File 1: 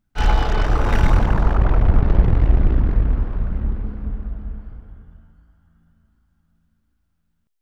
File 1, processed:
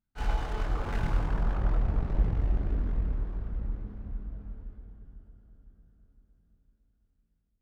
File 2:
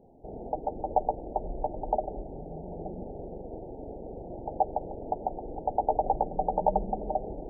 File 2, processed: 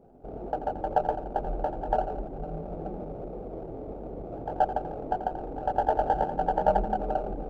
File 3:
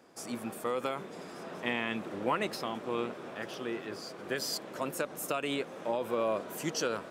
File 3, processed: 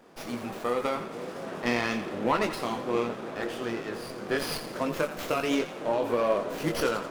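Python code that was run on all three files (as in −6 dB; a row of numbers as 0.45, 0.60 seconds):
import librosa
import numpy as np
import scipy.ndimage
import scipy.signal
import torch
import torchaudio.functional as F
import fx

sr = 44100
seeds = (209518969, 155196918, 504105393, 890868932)

y = fx.chorus_voices(x, sr, voices=4, hz=0.83, base_ms=22, depth_ms=3.7, mix_pct=35)
y = fx.echo_split(y, sr, split_hz=640.0, low_ms=506, high_ms=85, feedback_pct=52, wet_db=-11)
y = fx.running_max(y, sr, window=5)
y = y * 10.0 ** (-30 / 20.0) / np.sqrt(np.mean(np.square(y)))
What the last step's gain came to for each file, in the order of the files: −11.0, +4.5, +7.5 decibels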